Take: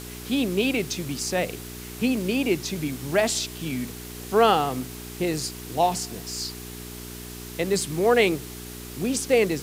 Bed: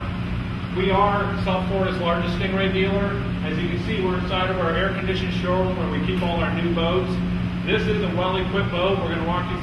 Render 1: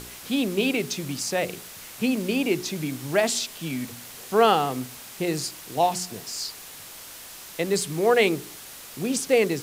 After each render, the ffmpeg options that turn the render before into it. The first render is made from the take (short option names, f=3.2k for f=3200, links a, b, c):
-af "bandreject=f=60:t=h:w=4,bandreject=f=120:t=h:w=4,bandreject=f=180:t=h:w=4,bandreject=f=240:t=h:w=4,bandreject=f=300:t=h:w=4,bandreject=f=360:t=h:w=4,bandreject=f=420:t=h:w=4"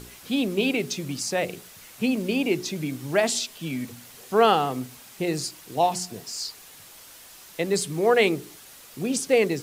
-af "afftdn=nr=6:nf=-42"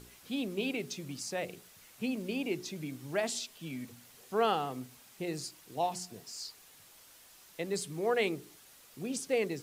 -af "volume=-10.5dB"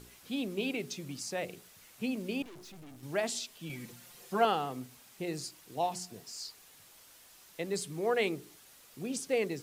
-filter_complex "[0:a]asettb=1/sr,asplit=3[a][b][c];[a]atrim=end=2.424[d];[b]atrim=start=2.42:end=3.03,asetpts=PTS-STARTPTS,afade=t=in:d=0.004:c=qsin,afade=t=out:st=0.606:d=0.004:c=qsin,aeval=exprs='(tanh(282*val(0)+0.5)-tanh(0.5))/282':c=same[e];[c]atrim=start=3.026[f];[d][e]acrossfade=d=0.004:c1=hsin:c2=qsin[g];[g][f]acrossfade=d=0.004:c1=qsin:c2=hsin,asettb=1/sr,asplit=3[h][i][j];[h]atrim=end=3.694[k];[i]atrim=start=3.69:end=4.45,asetpts=PTS-STARTPTS,afade=t=in:d=0.004:c=qsin,afade=t=out:st=0.756:d=0.004:c=qsin,aecho=1:1:5.7:0.97,atrim=end_sample=33516[l];[j]atrim=start=4.446[m];[k][l]acrossfade=d=0.004:c1=hsin:c2=qsin[n];[n][m]acrossfade=d=0.004:c1=qsin:c2=hsin"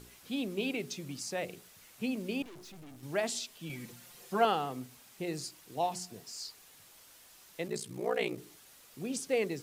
-filter_complex "[0:a]asettb=1/sr,asplit=3[a][b][c];[a]atrim=end=7.674[d];[b]atrim=start=7.67:end=8.38,asetpts=PTS-STARTPTS,afade=t=in:d=0.004:c=qsin,afade=t=out:st=0.706:d=0.004:c=qsin,aeval=exprs='val(0)*sin(2*PI*30*n/s)':c=same[e];[c]atrim=start=8.376[f];[d][e]acrossfade=d=0.004:c1=hsin:c2=qsin[g];[g][f]acrossfade=d=0.004:c1=qsin:c2=hsin"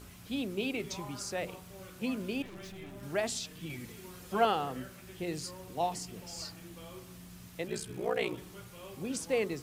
-filter_complex "[1:a]volume=-27.5dB[a];[0:a][a]amix=inputs=2:normalize=0"